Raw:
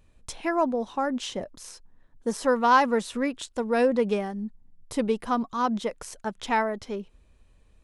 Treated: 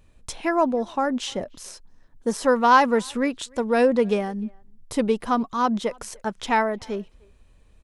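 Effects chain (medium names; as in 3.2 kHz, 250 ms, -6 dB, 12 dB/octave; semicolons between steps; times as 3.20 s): speakerphone echo 300 ms, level -27 dB; trim +3.5 dB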